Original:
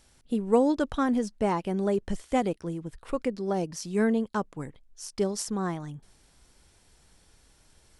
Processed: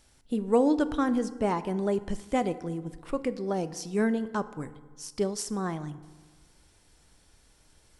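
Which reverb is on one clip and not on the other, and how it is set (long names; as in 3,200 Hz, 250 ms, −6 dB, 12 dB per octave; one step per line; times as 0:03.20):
feedback delay network reverb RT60 1.4 s, low-frequency decay 1.05×, high-frequency decay 0.5×, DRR 12.5 dB
level −1 dB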